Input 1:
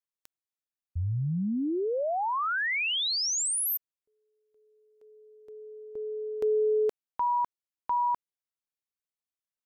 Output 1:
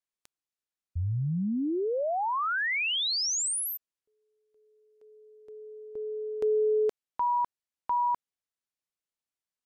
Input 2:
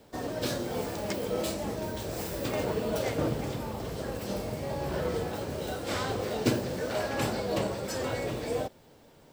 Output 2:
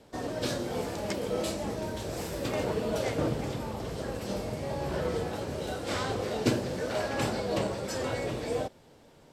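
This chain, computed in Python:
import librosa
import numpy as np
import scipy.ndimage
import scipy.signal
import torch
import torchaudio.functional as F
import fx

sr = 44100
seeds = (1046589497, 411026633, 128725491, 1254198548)

y = scipy.signal.sosfilt(scipy.signal.butter(2, 11000.0, 'lowpass', fs=sr, output='sos'), x)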